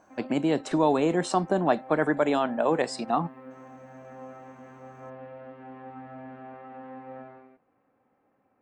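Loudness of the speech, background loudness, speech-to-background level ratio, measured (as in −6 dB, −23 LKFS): −26.0 LKFS, −45.5 LKFS, 19.5 dB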